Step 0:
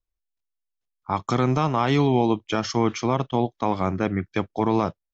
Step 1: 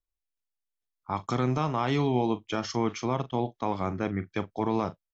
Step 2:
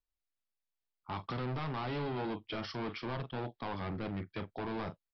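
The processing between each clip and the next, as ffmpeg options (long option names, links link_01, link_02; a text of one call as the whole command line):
ffmpeg -i in.wav -filter_complex "[0:a]asplit=2[link_01][link_02];[link_02]adelay=40,volume=-14dB[link_03];[link_01][link_03]amix=inputs=2:normalize=0,volume=-6dB" out.wav
ffmpeg -i in.wav -af "volume=31dB,asoftclip=hard,volume=-31dB,aresample=11025,aresample=44100,volume=-3dB" out.wav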